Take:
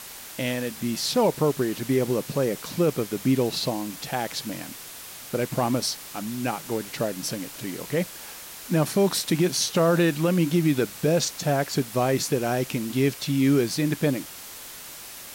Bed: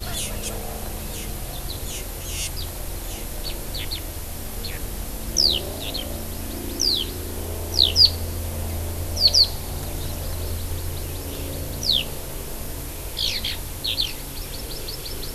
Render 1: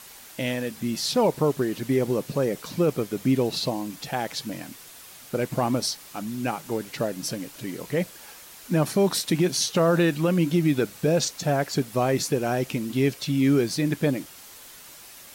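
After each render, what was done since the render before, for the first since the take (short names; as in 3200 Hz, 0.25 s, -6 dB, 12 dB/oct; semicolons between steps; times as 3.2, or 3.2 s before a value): denoiser 6 dB, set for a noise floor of -41 dBFS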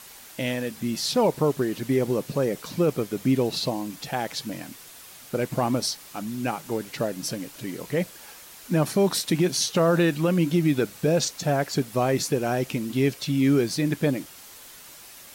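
nothing audible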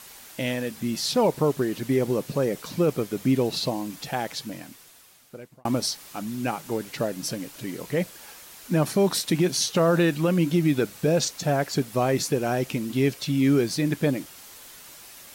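4.14–5.65 fade out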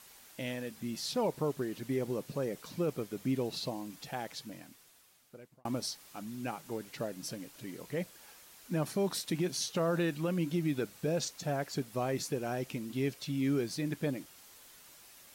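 gain -10.5 dB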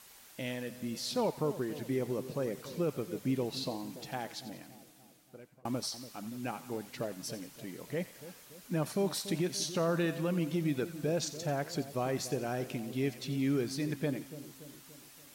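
split-band echo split 800 Hz, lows 0.287 s, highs 89 ms, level -13.5 dB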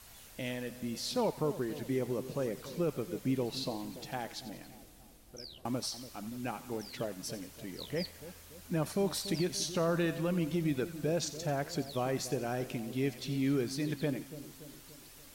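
add bed -30.5 dB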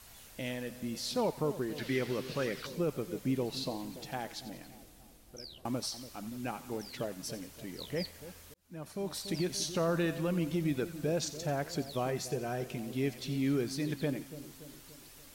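1.78–2.67 band shelf 2600 Hz +10.5 dB 2.3 oct; 8.54–9.51 fade in linear; 12.1–12.78 notch comb 280 Hz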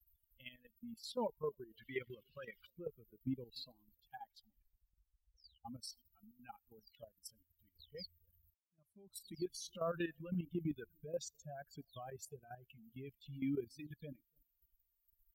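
per-bin expansion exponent 3; level quantiser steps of 12 dB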